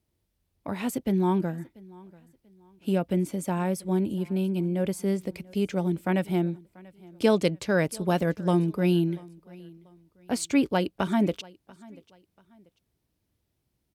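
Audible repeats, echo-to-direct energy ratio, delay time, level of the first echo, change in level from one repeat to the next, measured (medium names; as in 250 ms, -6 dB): 2, -23.0 dB, 688 ms, -23.5 dB, -9.5 dB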